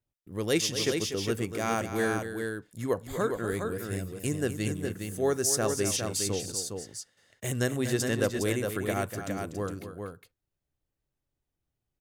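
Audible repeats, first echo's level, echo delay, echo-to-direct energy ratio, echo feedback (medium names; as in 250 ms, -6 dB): 2, -10.5 dB, 243 ms, -4.5 dB, no regular repeats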